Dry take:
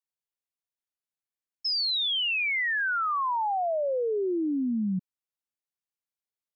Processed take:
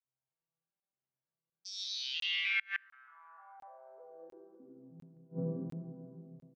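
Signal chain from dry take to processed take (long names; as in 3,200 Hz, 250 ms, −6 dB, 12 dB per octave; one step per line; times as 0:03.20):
vocoder with an arpeggio as carrier major triad, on C3, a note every 306 ms
low-pass filter 2,500 Hz 6 dB per octave
on a send: ambience of single reflections 14 ms −8.5 dB, 63 ms −17.5 dB
on the sum: dense smooth reverb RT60 2.7 s, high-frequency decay 0.7×, DRR −5 dB
gate with flip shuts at −19 dBFS, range −32 dB
regular buffer underruns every 0.70 s, samples 1,024, zero, from 0:00.80
level −2 dB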